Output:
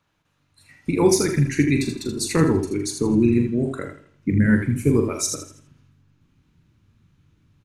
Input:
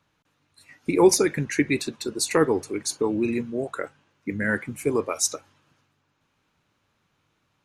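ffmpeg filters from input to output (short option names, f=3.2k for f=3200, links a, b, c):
-filter_complex "[0:a]asplit=2[a][b];[b]aecho=0:1:82|164|246|328:0.224|0.0895|0.0358|0.0143[c];[a][c]amix=inputs=2:normalize=0,asubboost=boost=10:cutoff=210,asplit=2[d][e];[e]aecho=0:1:42|79:0.398|0.422[f];[d][f]amix=inputs=2:normalize=0,volume=-1.5dB"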